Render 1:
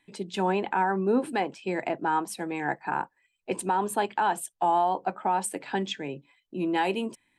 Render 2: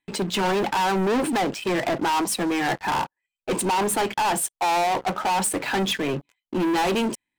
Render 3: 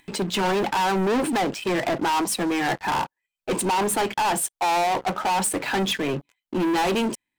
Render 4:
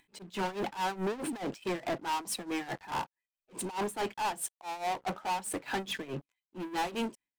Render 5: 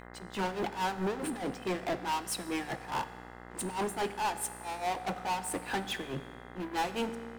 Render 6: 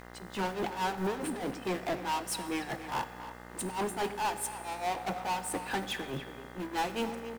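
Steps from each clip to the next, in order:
waveshaping leveller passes 5; trim -3.5 dB
upward compressor, threshold -44 dBFS
slow attack 175 ms; tremolo 4.7 Hz, depth 85%; trim -8 dB
mains buzz 60 Hz, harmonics 35, -49 dBFS -2 dB/octave; on a send at -11 dB: reverberation RT60 1.7 s, pre-delay 3 ms
block-companded coder 5-bit; speakerphone echo 280 ms, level -9 dB

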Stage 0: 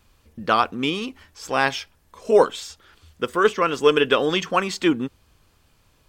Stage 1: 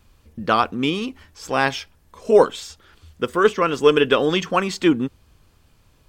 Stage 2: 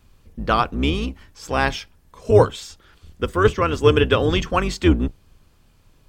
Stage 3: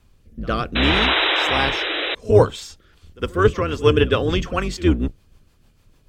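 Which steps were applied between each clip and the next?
bass shelf 370 Hz +5 dB
octave divider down 2 oct, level +2 dB; trim -1 dB
pre-echo 60 ms -21 dB; painted sound noise, 0.75–2.15 s, 290–4000 Hz -19 dBFS; rotary cabinet horn 0.65 Hz, later 6.7 Hz, at 2.51 s; trim +1 dB

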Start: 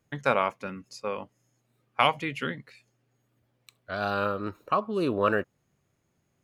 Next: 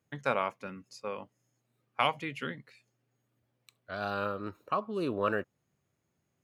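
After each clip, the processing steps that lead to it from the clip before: high-pass 60 Hz; trim -5.5 dB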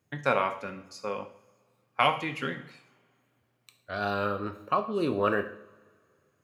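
two-slope reverb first 0.57 s, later 2.3 s, from -22 dB, DRR 6 dB; trim +3.5 dB

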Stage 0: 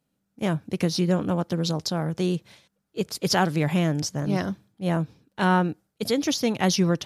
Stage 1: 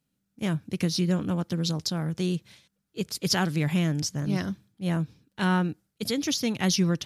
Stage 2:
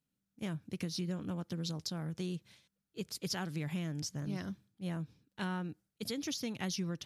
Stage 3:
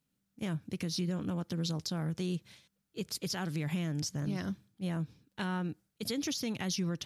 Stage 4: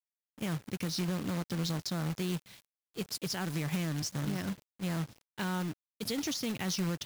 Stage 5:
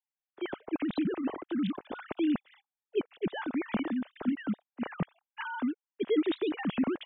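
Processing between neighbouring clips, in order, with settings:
peaking EQ 670 Hz -8.5 dB 2 oct
compression 3:1, threshold -26 dBFS, peak gain reduction 6 dB; trim -8.5 dB
peak limiter -30 dBFS, peak gain reduction 6.5 dB; trim +5 dB
companded quantiser 4-bit
formants replaced by sine waves; tilt shelf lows +3.5 dB, about 910 Hz; warped record 33 1/3 rpm, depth 160 cents

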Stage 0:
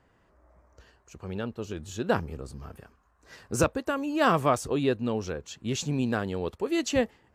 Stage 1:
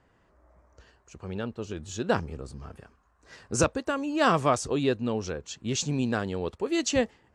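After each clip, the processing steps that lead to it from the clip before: low-pass 9.5 kHz 24 dB/octave; dynamic bell 5.9 kHz, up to +5 dB, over -47 dBFS, Q 0.98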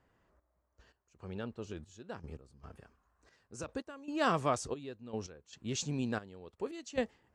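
trance gate "xxx...x..xx" 114 bpm -12 dB; trim -7.5 dB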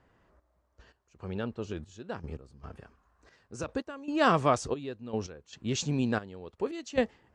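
distance through air 54 m; trim +6.5 dB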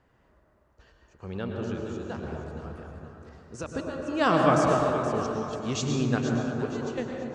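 fade out at the end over 0.86 s; echo whose repeats swap between lows and highs 237 ms, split 1.1 kHz, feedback 61%, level -6 dB; reverberation RT60 2.8 s, pre-delay 98 ms, DRR 0.5 dB

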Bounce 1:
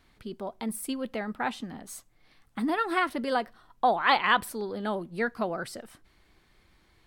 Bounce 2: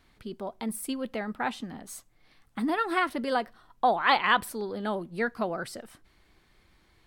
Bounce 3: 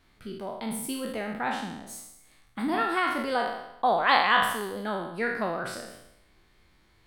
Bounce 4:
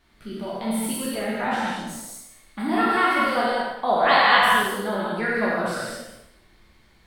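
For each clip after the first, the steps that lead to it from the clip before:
no audible change
spectral sustain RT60 0.84 s; trim -2 dB
gated-style reverb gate 260 ms flat, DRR -4.5 dB

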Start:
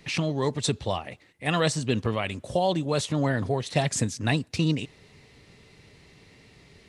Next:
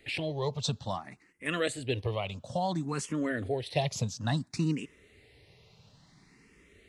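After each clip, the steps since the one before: barber-pole phaser +0.58 Hz; trim -3 dB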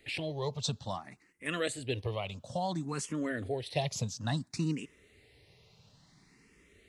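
tone controls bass 0 dB, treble +3 dB; trim -3 dB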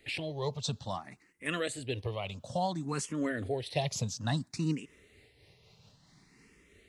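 random flutter of the level, depth 55%; trim +3 dB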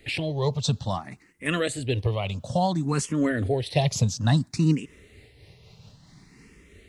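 bass shelf 210 Hz +7.5 dB; trim +6.5 dB

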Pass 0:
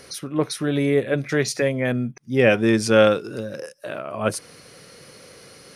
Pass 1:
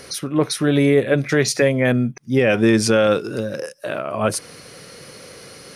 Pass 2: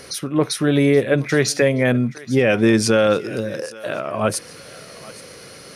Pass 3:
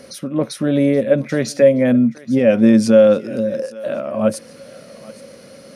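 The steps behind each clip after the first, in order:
peak limiter -11 dBFS, peak gain reduction 8.5 dB; trim +5.5 dB
thinning echo 825 ms, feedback 45%, high-pass 580 Hz, level -18 dB
small resonant body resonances 230/550 Hz, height 15 dB, ringing for 45 ms; trim -6.5 dB

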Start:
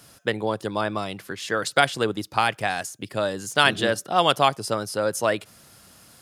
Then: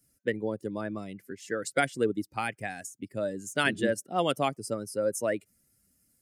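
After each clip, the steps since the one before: expander on every frequency bin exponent 1.5; ten-band graphic EQ 250 Hz +8 dB, 500 Hz +5 dB, 1 kHz -7 dB, 2 kHz +6 dB, 4 kHz -9 dB, 8 kHz +6 dB; trim -6.5 dB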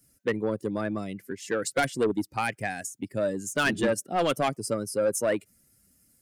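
saturation -23.5 dBFS, distortion -11 dB; trim +5.5 dB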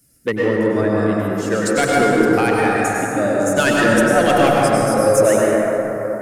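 plate-style reverb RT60 4.2 s, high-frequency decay 0.3×, pre-delay 85 ms, DRR -5 dB; trim +6 dB

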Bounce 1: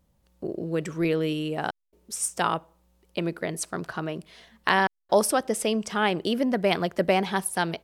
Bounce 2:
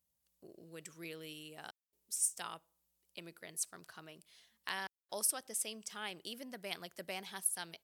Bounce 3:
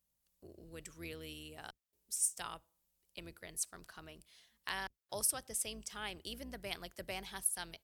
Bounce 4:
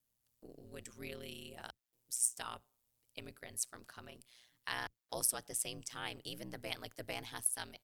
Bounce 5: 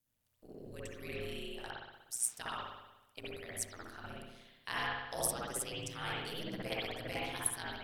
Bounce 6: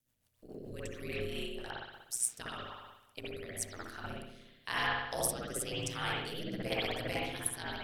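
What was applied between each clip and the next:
high-pass 43 Hz; pre-emphasis filter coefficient 0.9; trim -5.5 dB
octave divider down 2 oct, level -2 dB
ring modulator 61 Hz; trim +3 dB
phaser 1.7 Hz, delay 3 ms, feedback 27%; spring tank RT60 1 s, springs 60 ms, chirp 35 ms, DRR -6 dB; trim -2 dB
rotary cabinet horn 7 Hz, later 1 Hz, at 0.80 s; trim +5.5 dB

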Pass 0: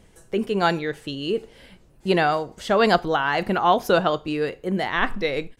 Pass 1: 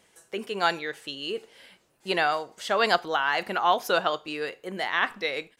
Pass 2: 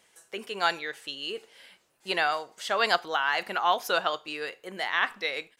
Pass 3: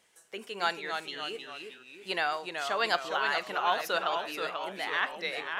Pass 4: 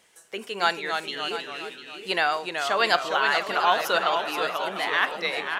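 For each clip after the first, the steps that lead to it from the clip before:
high-pass 1 kHz 6 dB/octave
bass shelf 500 Hz -8.5 dB
ever faster or slower copies 247 ms, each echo -1 st, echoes 3, each echo -6 dB; trim -4 dB
delay 699 ms -12 dB; trim +6.5 dB

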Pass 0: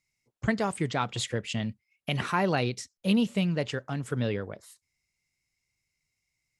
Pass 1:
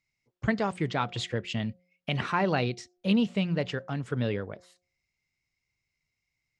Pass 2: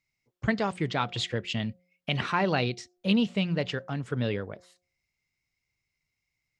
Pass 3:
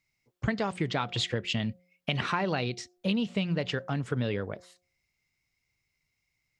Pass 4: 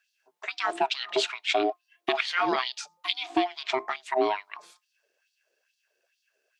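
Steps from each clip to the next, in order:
low-pass 4.9 kHz 12 dB/octave; de-hum 179 Hz, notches 4
dynamic bell 3.7 kHz, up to +4 dB, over -43 dBFS, Q 0.93
compression, threshold -28 dBFS, peak gain reduction 8.5 dB; trim +3 dB
ring modulator 520 Hz; LFO high-pass sine 2.3 Hz 350–4100 Hz; trim +5 dB

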